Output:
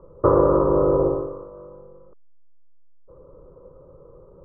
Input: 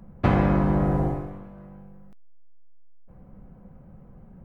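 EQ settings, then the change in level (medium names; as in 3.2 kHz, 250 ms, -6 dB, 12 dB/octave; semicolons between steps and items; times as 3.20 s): rippled Chebyshev low-pass 1.7 kHz, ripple 6 dB; peaking EQ 580 Hz +12 dB 2.3 oct; static phaser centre 1.1 kHz, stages 8; +3.5 dB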